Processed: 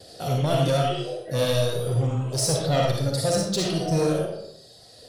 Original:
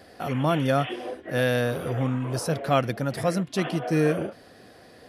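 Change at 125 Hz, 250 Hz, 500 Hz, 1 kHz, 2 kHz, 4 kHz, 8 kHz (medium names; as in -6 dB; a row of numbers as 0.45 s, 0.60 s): +3.5 dB, -1.5 dB, +2.0 dB, -0.5 dB, -5.0 dB, +7.5 dB, +10.5 dB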